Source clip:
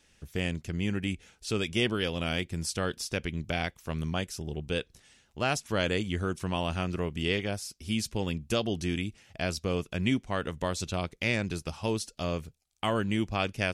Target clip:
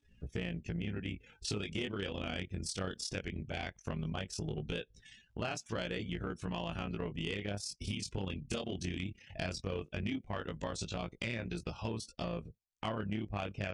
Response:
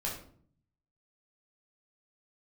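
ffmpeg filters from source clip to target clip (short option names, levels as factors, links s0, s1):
-filter_complex "[0:a]acrossover=split=2200[s0][s1];[s1]dynaudnorm=f=470:g=13:m=1.41[s2];[s0][s2]amix=inputs=2:normalize=0,highshelf=f=6800:g=-6,acompressor=threshold=0.01:ratio=5,tremolo=f=33:d=0.788,flanger=delay=17:depth=4.3:speed=0.17,afftdn=nr=23:nf=-66,asoftclip=type=tanh:threshold=0.0126,aresample=22050,aresample=44100,volume=3.76"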